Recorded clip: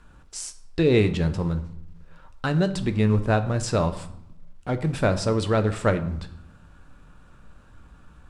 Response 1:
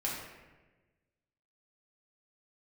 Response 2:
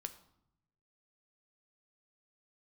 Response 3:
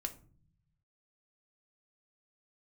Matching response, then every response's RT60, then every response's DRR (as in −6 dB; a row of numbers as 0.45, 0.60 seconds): 2; 1.2, 0.75, 0.45 seconds; −5.0, 8.5, 5.0 decibels